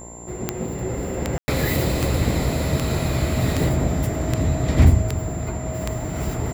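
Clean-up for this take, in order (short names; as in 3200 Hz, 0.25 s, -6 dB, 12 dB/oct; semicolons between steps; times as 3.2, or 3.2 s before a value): de-click; de-hum 58.9 Hz, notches 18; notch 7300 Hz, Q 30; room tone fill 1.38–1.48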